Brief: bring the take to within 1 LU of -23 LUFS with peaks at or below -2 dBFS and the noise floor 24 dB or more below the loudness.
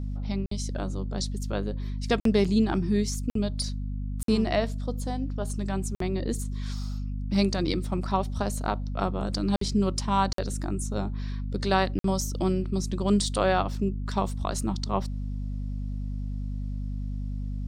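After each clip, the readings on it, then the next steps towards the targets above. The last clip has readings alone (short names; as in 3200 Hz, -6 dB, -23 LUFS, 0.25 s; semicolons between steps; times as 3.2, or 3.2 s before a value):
dropouts 8; longest dropout 53 ms; hum 50 Hz; harmonics up to 250 Hz; hum level -29 dBFS; loudness -29.0 LUFS; peak -10.0 dBFS; loudness target -23.0 LUFS
-> interpolate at 0.46/2.2/3.3/4.23/5.95/9.56/10.33/11.99, 53 ms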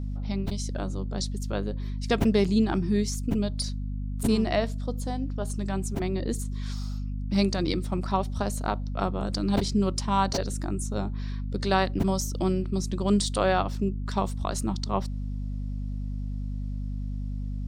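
dropouts 0; hum 50 Hz; harmonics up to 250 Hz; hum level -29 dBFS
-> notches 50/100/150/200/250 Hz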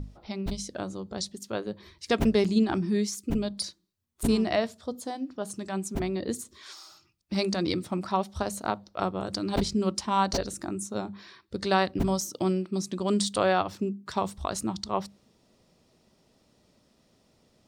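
hum none; loudness -29.5 LUFS; peak -11.0 dBFS; loudness target -23.0 LUFS
-> gain +6.5 dB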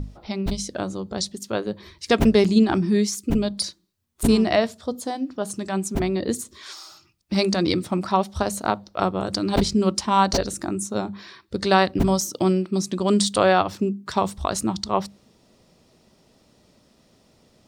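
loudness -23.0 LUFS; peak -4.5 dBFS; noise floor -60 dBFS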